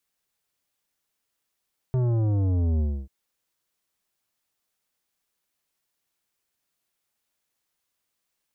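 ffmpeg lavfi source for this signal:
-f lavfi -i "aevalsrc='0.0841*clip((1.14-t)/0.28,0,1)*tanh(3.76*sin(2*PI*130*1.14/log(65/130)*(exp(log(65/130)*t/1.14)-1)))/tanh(3.76)':d=1.14:s=44100"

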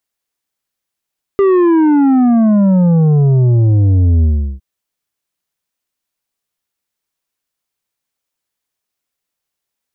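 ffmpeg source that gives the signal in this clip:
-f lavfi -i "aevalsrc='0.398*clip((3.21-t)/0.37,0,1)*tanh(2.37*sin(2*PI*400*3.21/log(65/400)*(exp(log(65/400)*t/3.21)-1)))/tanh(2.37)':d=3.21:s=44100"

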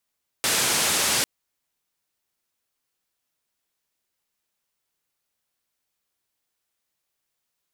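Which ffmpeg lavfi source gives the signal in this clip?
-f lavfi -i "anoisesrc=c=white:d=0.8:r=44100:seed=1,highpass=f=97,lowpass=f=9900,volume=-14.2dB"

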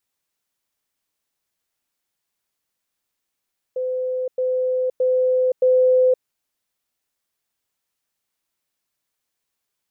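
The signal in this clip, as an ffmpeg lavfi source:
-f lavfi -i "aevalsrc='pow(10,(-21+3*floor(t/0.62))/20)*sin(2*PI*510*t)*clip(min(mod(t,0.62),0.52-mod(t,0.62))/0.005,0,1)':d=2.48:s=44100"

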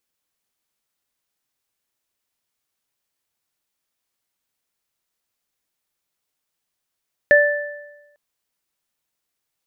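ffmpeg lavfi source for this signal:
-f lavfi -i "aevalsrc='0.316*pow(10,-3*t/1.09)*sin(2*PI*585*t)+0.335*pow(10,-3*t/0.97)*sin(2*PI*1760*t)':d=0.85:s=44100"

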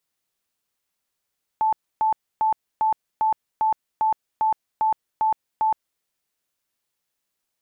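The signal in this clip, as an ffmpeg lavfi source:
-f lavfi -i "aevalsrc='0.141*sin(2*PI*874*mod(t,0.4))*lt(mod(t,0.4),102/874)':d=4.4:s=44100"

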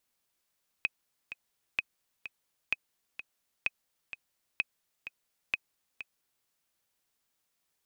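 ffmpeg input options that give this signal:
-f lavfi -i "aevalsrc='pow(10,(-14.5-12*gte(mod(t,2*60/128),60/128))/20)*sin(2*PI*2530*mod(t,60/128))*exp(-6.91*mod(t,60/128)/0.03)':d=5.62:s=44100"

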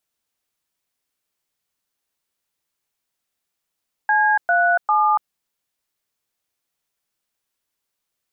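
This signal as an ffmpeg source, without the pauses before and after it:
-f lavfi -i "aevalsrc='0.15*clip(min(mod(t,0.399),0.286-mod(t,0.399))/0.002,0,1)*(eq(floor(t/0.399),0)*(sin(2*PI*852*mod(t,0.399))+sin(2*PI*1633*mod(t,0.399)))+eq(floor(t/0.399),1)*(sin(2*PI*697*mod(t,0.399))+sin(2*PI*1477*mod(t,0.399)))+eq(floor(t/0.399),2)*(sin(2*PI*852*mod(t,0.399))+sin(2*PI*1209*mod(t,0.399))))':d=1.197:s=44100"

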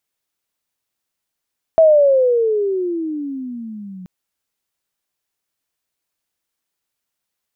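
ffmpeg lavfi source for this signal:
-f lavfi -i "aevalsrc='pow(10,(-6-25*t/2.28)/20)*sin(2*PI*658*2.28/(-22.5*log(2)/12)*(exp(-22.5*log(2)/12*t/2.28)-1))':d=2.28:s=44100"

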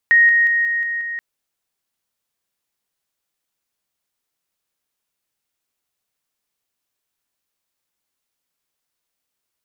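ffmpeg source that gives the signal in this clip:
-f lavfi -i "aevalsrc='pow(10,(-8.5-3*floor(t/0.18))/20)*sin(2*PI*1870*t)':d=1.08:s=44100"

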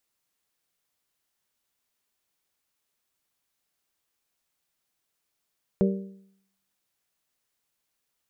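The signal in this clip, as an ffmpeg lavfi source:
-f lavfi -i "aevalsrc='0.133*pow(10,-3*t/0.69)*sin(2*PI*194*t)+0.0841*pow(10,-3*t/0.56)*sin(2*PI*388*t)+0.0531*pow(10,-3*t/0.531)*sin(2*PI*465.6*t)+0.0335*pow(10,-3*t/0.496)*sin(2*PI*582*t)':d=1.55:s=44100"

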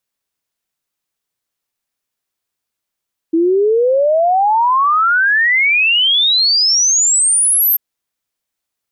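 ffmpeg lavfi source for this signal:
-f lavfi -i "aevalsrc='0.335*clip(min(t,4.44-t)/0.01,0,1)*sin(2*PI*320*4.44/log(13000/320)*(exp(log(13000/320)*t/4.44)-1))':d=4.44:s=44100"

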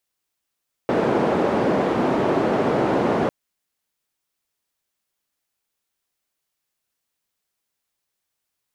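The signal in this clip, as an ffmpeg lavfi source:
-f lavfi -i "anoisesrc=c=white:d=2.4:r=44100:seed=1,highpass=f=200,lowpass=f=530,volume=2.5dB"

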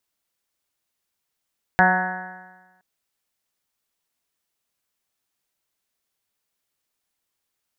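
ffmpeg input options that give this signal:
-f lavfi -i "aevalsrc='0.1*pow(10,-3*t/1.22)*sin(2*PI*183.05*t)+0.0376*pow(10,-3*t/1.22)*sin(2*PI*366.43*t)+0.0447*pow(10,-3*t/1.22)*sin(2*PI*550.46*t)+0.178*pow(10,-3*t/1.22)*sin(2*PI*735.45*t)+0.106*pow(10,-3*t/1.22)*sin(2*PI*921.72*t)+0.0355*pow(10,-3*t/1.22)*sin(2*PI*1109.6*t)+0.0355*pow(10,-3*t/1.22)*sin(2*PI*1299.38*t)+0.112*pow(10,-3*t/1.22)*sin(2*PI*1491.38*t)+0.158*pow(10,-3*t/1.22)*sin(2*PI*1685.9*t)+0.0473*pow(10,-3*t/1.22)*sin(2*PI*1883.21*t)+0.0126*pow(10,-3*t/1.22)*sin(2*PI*2083.62*t)':d=1.02:s=44100"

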